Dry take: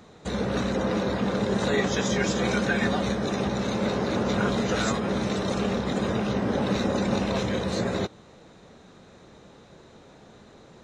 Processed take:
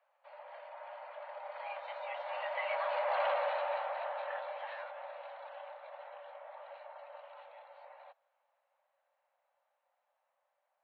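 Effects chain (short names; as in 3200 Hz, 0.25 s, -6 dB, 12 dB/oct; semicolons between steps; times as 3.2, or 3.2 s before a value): Doppler pass-by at 3.25, 15 m/s, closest 3 m; soft clip -26.5 dBFS, distortion -13 dB; mistuned SSB +380 Hz 150–2900 Hz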